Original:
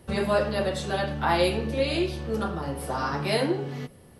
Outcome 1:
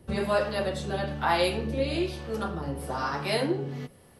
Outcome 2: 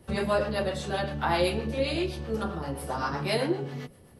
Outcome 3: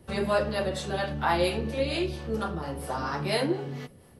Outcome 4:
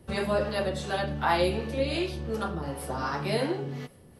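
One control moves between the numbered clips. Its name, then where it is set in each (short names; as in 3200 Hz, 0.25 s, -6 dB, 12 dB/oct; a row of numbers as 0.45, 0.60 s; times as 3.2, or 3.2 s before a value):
harmonic tremolo, rate: 1.1, 7.7, 4.3, 2.7 Hz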